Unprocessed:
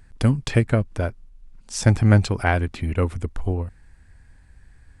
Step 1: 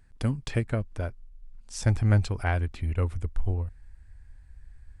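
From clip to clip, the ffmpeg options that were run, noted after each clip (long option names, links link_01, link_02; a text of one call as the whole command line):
ffmpeg -i in.wav -af "asubboost=boost=4:cutoff=100,volume=-8.5dB" out.wav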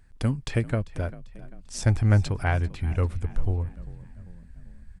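ffmpeg -i in.wav -filter_complex "[0:a]asplit=5[link_01][link_02][link_03][link_04][link_05];[link_02]adelay=394,afreqshift=41,volume=-19dB[link_06];[link_03]adelay=788,afreqshift=82,volume=-25.7dB[link_07];[link_04]adelay=1182,afreqshift=123,volume=-32.5dB[link_08];[link_05]adelay=1576,afreqshift=164,volume=-39.2dB[link_09];[link_01][link_06][link_07][link_08][link_09]amix=inputs=5:normalize=0,volume=2dB" out.wav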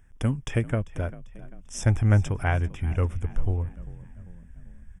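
ffmpeg -i in.wav -af "asuperstop=centerf=4300:order=8:qfactor=2.8" out.wav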